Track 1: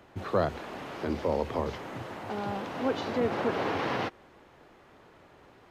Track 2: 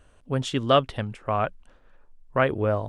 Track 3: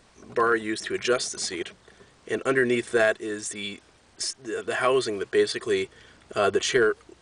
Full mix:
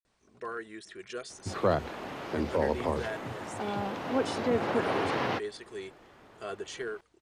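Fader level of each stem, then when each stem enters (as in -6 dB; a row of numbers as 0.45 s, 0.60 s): +0.5 dB, mute, -16.0 dB; 1.30 s, mute, 0.05 s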